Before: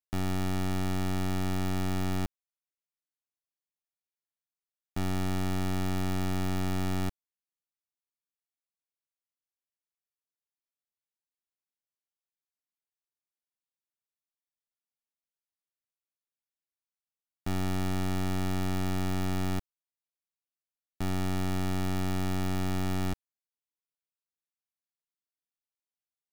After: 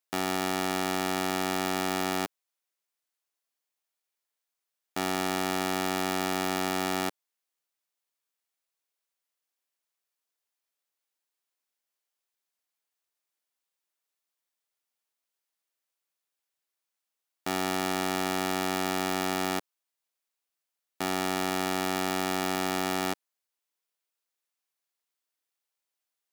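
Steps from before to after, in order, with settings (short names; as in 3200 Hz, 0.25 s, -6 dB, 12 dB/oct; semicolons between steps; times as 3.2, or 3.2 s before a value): HPF 380 Hz 12 dB/oct; gain +8.5 dB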